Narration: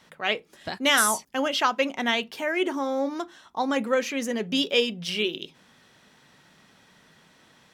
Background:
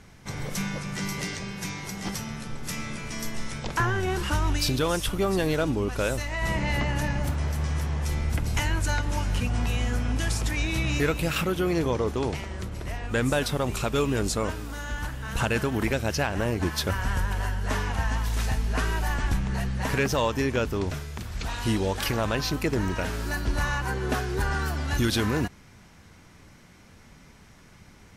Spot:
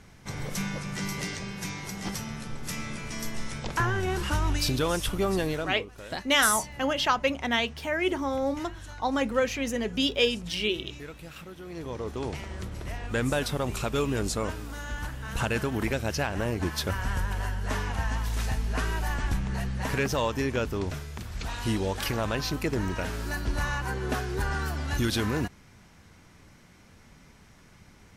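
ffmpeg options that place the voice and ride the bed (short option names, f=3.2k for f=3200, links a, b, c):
-filter_complex "[0:a]adelay=5450,volume=-1.5dB[a];[1:a]volume=13.5dB,afade=t=out:st=5.34:d=0.5:silence=0.158489,afade=t=in:st=11.65:d=0.88:silence=0.177828[b];[a][b]amix=inputs=2:normalize=0"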